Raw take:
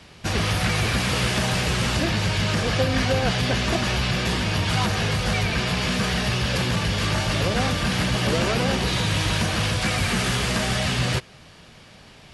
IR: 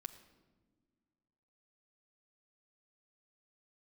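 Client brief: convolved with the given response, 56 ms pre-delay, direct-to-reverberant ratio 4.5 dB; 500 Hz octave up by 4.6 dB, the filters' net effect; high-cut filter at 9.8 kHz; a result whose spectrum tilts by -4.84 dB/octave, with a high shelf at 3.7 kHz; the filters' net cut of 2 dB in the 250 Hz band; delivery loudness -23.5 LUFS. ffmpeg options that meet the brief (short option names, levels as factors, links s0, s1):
-filter_complex "[0:a]lowpass=9800,equalizer=f=250:t=o:g=-4.5,equalizer=f=500:t=o:g=6.5,highshelf=f=3700:g=-3,asplit=2[s0][s1];[1:a]atrim=start_sample=2205,adelay=56[s2];[s1][s2]afir=irnorm=-1:irlink=0,volume=1[s3];[s0][s3]amix=inputs=2:normalize=0,volume=0.75"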